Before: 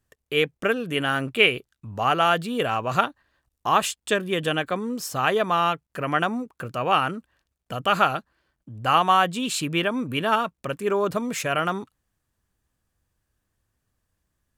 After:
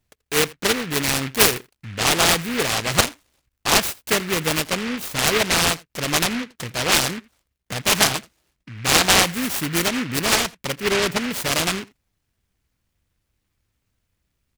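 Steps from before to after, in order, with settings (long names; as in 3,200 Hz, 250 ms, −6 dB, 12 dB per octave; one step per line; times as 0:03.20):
single-tap delay 83 ms −22.5 dB
short delay modulated by noise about 1,900 Hz, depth 0.29 ms
level +2.5 dB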